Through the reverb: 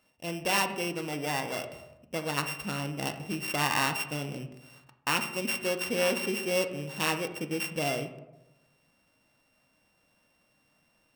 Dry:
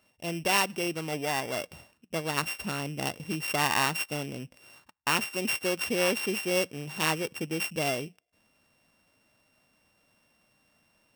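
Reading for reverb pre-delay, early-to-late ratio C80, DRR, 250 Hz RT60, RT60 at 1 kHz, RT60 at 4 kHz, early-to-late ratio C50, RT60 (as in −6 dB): 3 ms, 12.5 dB, 6.0 dB, 0.95 s, 0.85 s, 0.50 s, 10.5 dB, 0.95 s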